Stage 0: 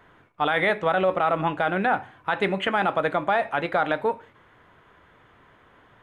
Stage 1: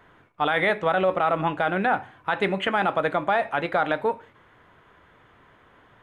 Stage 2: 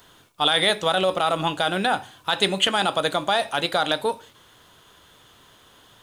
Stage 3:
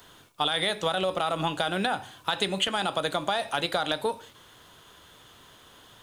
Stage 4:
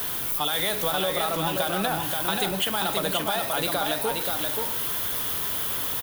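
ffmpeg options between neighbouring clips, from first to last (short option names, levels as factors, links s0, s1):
-af anull
-af "aexciter=amount=11:drive=4.4:freq=3200"
-filter_complex "[0:a]acrossover=split=120[s0][s1];[s1]acompressor=threshold=0.0708:ratio=6[s2];[s0][s2]amix=inputs=2:normalize=0"
-filter_complex "[0:a]aeval=exprs='val(0)+0.5*0.0398*sgn(val(0))':c=same,acrossover=split=110|4400[s0][s1][s2];[s2]aexciter=amount=3.2:drive=8.1:freq=10000[s3];[s0][s1][s3]amix=inputs=3:normalize=0,aecho=1:1:529:0.631,volume=0.708"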